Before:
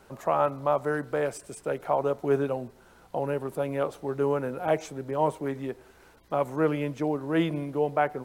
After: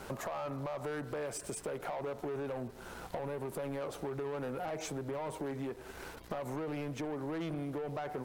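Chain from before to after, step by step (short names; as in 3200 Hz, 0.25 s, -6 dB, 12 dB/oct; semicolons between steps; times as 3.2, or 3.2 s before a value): limiter -23 dBFS, peak gain reduction 11.5 dB; sample leveller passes 2; compressor 6:1, threshold -40 dBFS, peak gain reduction 13 dB; gain +2.5 dB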